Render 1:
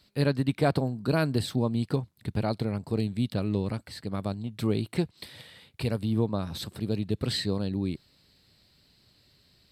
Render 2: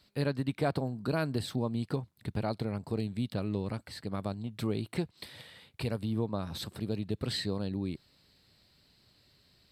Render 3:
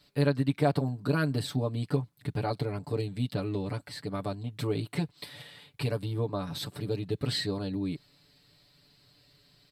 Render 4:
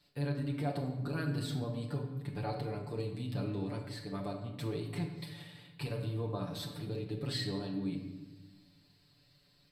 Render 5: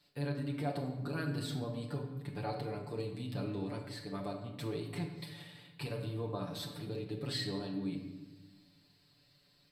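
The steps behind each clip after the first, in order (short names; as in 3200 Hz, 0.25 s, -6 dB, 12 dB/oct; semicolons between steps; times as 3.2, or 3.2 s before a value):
compressor 1.5:1, threshold -30 dBFS, peak gain reduction 4.5 dB; bell 1000 Hz +2.5 dB 2.3 oct; gain -3 dB
comb 6.9 ms, depth 96%
limiter -21 dBFS, peak gain reduction 7 dB; on a send at -2 dB: reverb RT60 1.2 s, pre-delay 6 ms; on the sum: gain -7.5 dB
low shelf 110 Hz -7 dB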